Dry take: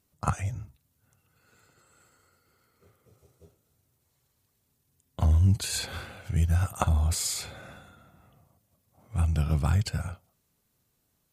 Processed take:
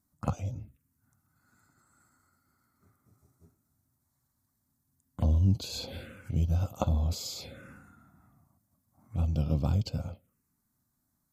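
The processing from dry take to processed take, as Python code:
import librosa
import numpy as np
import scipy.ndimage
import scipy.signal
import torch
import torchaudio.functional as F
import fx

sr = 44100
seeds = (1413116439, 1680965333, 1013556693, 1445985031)

y = fx.env_phaser(x, sr, low_hz=480.0, high_hz=1800.0, full_db=-28.5)
y = fx.small_body(y, sr, hz=(260.0, 520.0), ring_ms=25, db=9)
y = y * librosa.db_to_amplitude(-4.0)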